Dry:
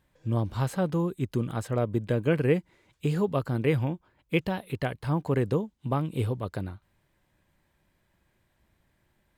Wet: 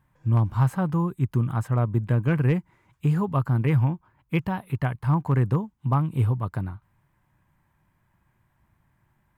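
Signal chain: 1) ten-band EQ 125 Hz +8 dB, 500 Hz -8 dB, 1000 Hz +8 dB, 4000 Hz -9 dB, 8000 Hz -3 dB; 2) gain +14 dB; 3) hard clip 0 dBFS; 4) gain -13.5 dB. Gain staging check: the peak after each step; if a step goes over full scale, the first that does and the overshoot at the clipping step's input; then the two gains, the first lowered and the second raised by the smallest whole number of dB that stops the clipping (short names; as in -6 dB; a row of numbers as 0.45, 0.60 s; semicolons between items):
-11.0, +3.0, 0.0, -13.5 dBFS; step 2, 3.0 dB; step 2 +11 dB, step 4 -10.5 dB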